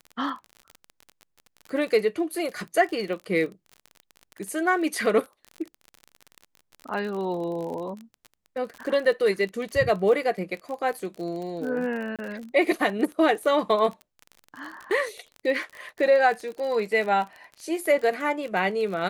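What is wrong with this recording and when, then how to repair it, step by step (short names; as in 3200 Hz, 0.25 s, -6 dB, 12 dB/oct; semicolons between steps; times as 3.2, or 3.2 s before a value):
crackle 38/s -32 dBFS
12.16–12.19 gap 27 ms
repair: de-click; interpolate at 12.16, 27 ms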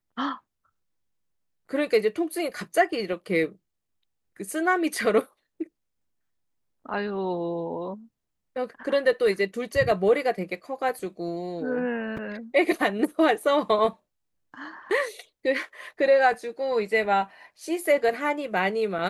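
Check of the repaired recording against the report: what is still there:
none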